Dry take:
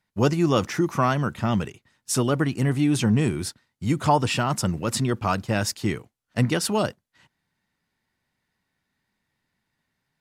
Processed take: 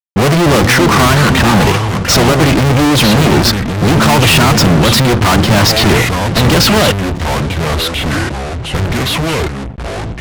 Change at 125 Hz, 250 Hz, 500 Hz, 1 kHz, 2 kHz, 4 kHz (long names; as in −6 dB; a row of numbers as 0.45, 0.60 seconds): +14.5, +13.0, +14.0, +14.0, +19.5, +21.0 decibels